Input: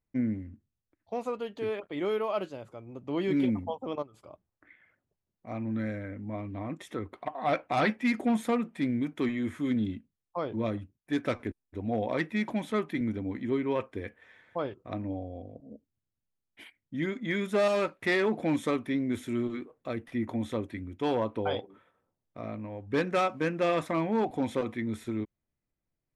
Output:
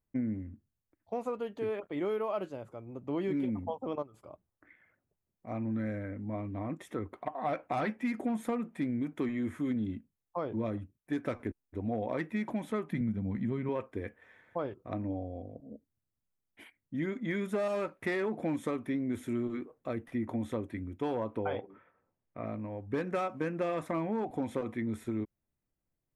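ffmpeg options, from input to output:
-filter_complex "[0:a]asettb=1/sr,asplit=3[a][b][c];[a]atrim=end=12.914[d];[b]atrim=start=12.91:end=13.69,asetpts=PTS-STARTPTS,afade=t=in:d=0.004:c=qsin,afade=t=out:st=0.776:d=0.004:c=qsin,lowshelf=f=240:t=q:w=3:g=6[e];[c]atrim=start=13.686[f];[d][e]acrossfade=d=0.004:c1=hsin:c2=qsin[g];[g][f]acrossfade=d=0.004:c1=qsin:c2=hsin,asettb=1/sr,asplit=3[h][i][j];[h]atrim=end=21.394[k];[i]atrim=start=21.39:end=22.46,asetpts=PTS-STARTPTS,afade=t=in:d=0.004:c=qsin,afade=t=out:st=1.066:d=0.004:c=qsin,lowpass=f=2.3k:t=q:w=1.7[l];[j]atrim=start=22.456[m];[k][l]acrossfade=d=0.004:c1=hsin:c2=qsin[n];[n][m]acrossfade=d=0.004:c1=qsin:c2=hsin,equalizer=f=4.1k:w=0.77:g=-8,acompressor=threshold=-29dB:ratio=6"

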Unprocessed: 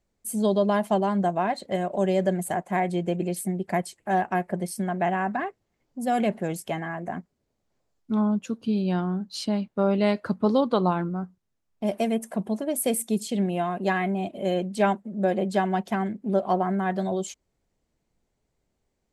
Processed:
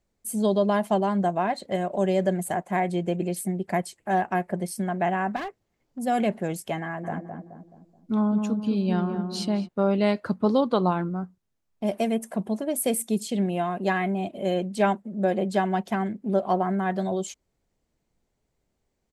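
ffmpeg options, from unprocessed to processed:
-filter_complex "[0:a]asettb=1/sr,asplit=3[a][b][c];[a]atrim=end=5.364[d];[b]atrim=start=5.36:end=5.99,asetpts=PTS-STARTPTS,afade=t=in:d=0.004:c=qsin,afade=t=out:st=0.626:d=0.004:c=qsin,asoftclip=type=hard:threshold=-29dB[e];[c]atrim=start=5.986[f];[d][e]acrossfade=d=0.004:c1=hsin:c2=qsin[g];[g][f]acrossfade=d=0.004:c1=qsin:c2=hsin,asplit=3[h][i][j];[h]afade=t=out:st=7.03:d=0.02[k];[i]asplit=2[l][m];[m]adelay=214,lowpass=f=930:p=1,volume=-5dB,asplit=2[n][o];[o]adelay=214,lowpass=f=930:p=1,volume=0.49,asplit=2[p][q];[q]adelay=214,lowpass=f=930:p=1,volume=0.49,asplit=2[r][s];[s]adelay=214,lowpass=f=930:p=1,volume=0.49,asplit=2[t][u];[u]adelay=214,lowpass=f=930:p=1,volume=0.49,asplit=2[v][w];[w]adelay=214,lowpass=f=930:p=1,volume=0.49[x];[l][n][p][r][t][v][x]amix=inputs=7:normalize=0,afade=t=in:st=7.03:d=0.02,afade=t=out:st=9.67:d=0.02[y];[j]afade=t=in:st=9.67:d=0.02[z];[k][y][z]amix=inputs=3:normalize=0"

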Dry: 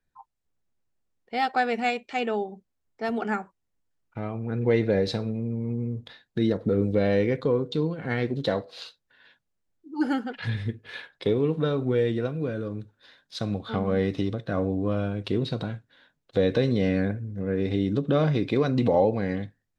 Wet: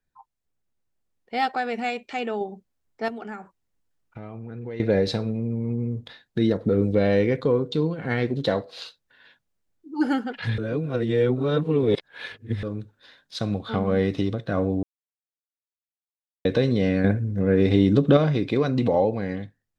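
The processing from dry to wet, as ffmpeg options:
-filter_complex "[0:a]asettb=1/sr,asplit=3[a][b][c];[a]atrim=end=1.544[d];[b]atrim=start=1.54:end=2.41,asetpts=PTS-STARTPTS,afade=t=in:d=0.004:c=qsin,afade=t=out:st=0.866:d=0.004:c=qsin,acompressor=threshold=-32dB:ratio=1.5:attack=3.2:release=140:knee=1:detection=peak[e];[c]atrim=start=2.406[f];[d][e]acrossfade=d=0.004:c1=hsin:c2=qsin[g];[g][f]acrossfade=d=0.004:c1=qsin:c2=hsin,asettb=1/sr,asplit=3[h][i][j];[h]atrim=end=3.084[k];[i]atrim=start=3.08:end=4.8,asetpts=PTS-STARTPTS,afade=t=in:d=0.004:c=qsin,afade=t=out:st=1.716:d=0.004:c=qsin,acompressor=threshold=-38dB:ratio=3:attack=3.2:release=140:knee=1:detection=peak[l];[j]atrim=start=4.796[m];[k][l]acrossfade=d=0.004:c1=hsin:c2=qsin[n];[n][m]acrossfade=d=0.004:c1=qsin:c2=hsin,asettb=1/sr,asplit=3[o][p][q];[o]atrim=end=17.044[r];[p]atrim=start=17.04:end=18.17,asetpts=PTS-STARTPTS,afade=t=in:d=0.004:c=qsin,afade=t=out:st=1.126:d=0.004:c=qsin,acontrast=54[s];[q]atrim=start=18.166[t];[r][s]acrossfade=d=0.004:c1=hsin:c2=qsin[u];[u][t]acrossfade=d=0.004:c1=qsin:c2=hsin,asplit=5[v][w][x][y][z];[v]atrim=end=10.582[aa];[w]atrim=start=10.578:end=12.632,asetpts=PTS-STARTPTS,areverse[ab];[x]atrim=start=12.628:end=14.83,asetpts=PTS-STARTPTS,afade=t=out:st=2.198:d=0.004:c=hsin[ac];[y]atrim=start=14.83:end=16.45,asetpts=PTS-STARTPTS,volume=0[ad];[z]atrim=start=16.45,asetpts=PTS-STARTPTS,afade=t=in:d=0.004:c=hsin[ae];[aa][ab]acrossfade=d=0.004:c1=hsin:c2=hsin[af];[ac][ad][ae]concat=n=3:v=0:a=1[ag];[af][ag]acrossfade=d=0.004:c1=hsin:c2=hsin,dynaudnorm=f=260:g=9:m=4dB,volume=-1.5dB"

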